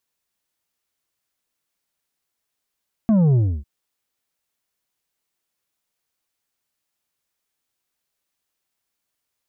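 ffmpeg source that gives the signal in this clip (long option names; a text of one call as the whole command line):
ffmpeg -f lavfi -i "aevalsrc='0.211*clip((0.55-t)/0.29,0,1)*tanh(2.11*sin(2*PI*230*0.55/log(65/230)*(exp(log(65/230)*t/0.55)-1)))/tanh(2.11)':duration=0.55:sample_rate=44100" out.wav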